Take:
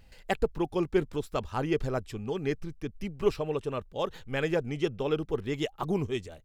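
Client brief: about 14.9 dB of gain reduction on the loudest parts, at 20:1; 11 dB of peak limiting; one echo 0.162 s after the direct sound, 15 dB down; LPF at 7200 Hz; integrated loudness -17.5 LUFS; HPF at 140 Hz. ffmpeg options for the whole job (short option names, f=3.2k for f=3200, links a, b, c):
-af "highpass=140,lowpass=7.2k,acompressor=threshold=-35dB:ratio=20,alimiter=level_in=8.5dB:limit=-24dB:level=0:latency=1,volume=-8.5dB,aecho=1:1:162:0.178,volume=26dB"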